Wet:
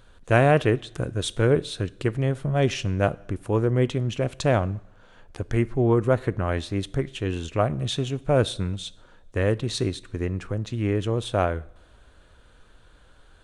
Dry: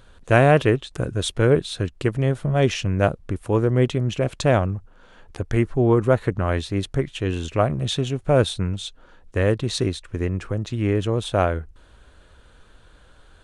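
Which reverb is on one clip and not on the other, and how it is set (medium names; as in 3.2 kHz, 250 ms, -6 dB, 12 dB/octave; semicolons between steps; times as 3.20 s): two-slope reverb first 0.65 s, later 2.6 s, from -21 dB, DRR 18.5 dB; trim -3 dB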